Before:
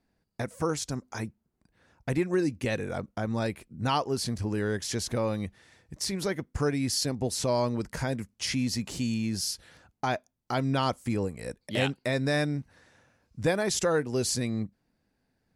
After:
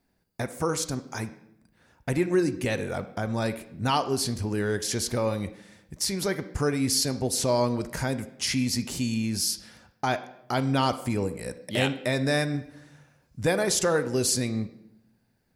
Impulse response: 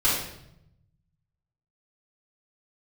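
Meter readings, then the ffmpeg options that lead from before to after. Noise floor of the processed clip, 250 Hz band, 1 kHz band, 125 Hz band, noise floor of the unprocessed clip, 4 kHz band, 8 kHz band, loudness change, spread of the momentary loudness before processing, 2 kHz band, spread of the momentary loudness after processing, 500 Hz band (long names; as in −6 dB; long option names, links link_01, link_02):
−69 dBFS, +2.0 dB, +2.5 dB, +1.5 dB, −78 dBFS, +3.5 dB, +5.0 dB, +3.0 dB, 9 LU, +2.5 dB, 10 LU, +2.5 dB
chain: -filter_complex "[0:a]highshelf=frequency=10000:gain=11,asplit=2[link_01][link_02];[link_02]highpass=frequency=180:width=0.5412,highpass=frequency=180:width=1.3066[link_03];[1:a]atrim=start_sample=2205,lowpass=5000[link_04];[link_03][link_04]afir=irnorm=-1:irlink=0,volume=-23dB[link_05];[link_01][link_05]amix=inputs=2:normalize=0,volume=1.5dB"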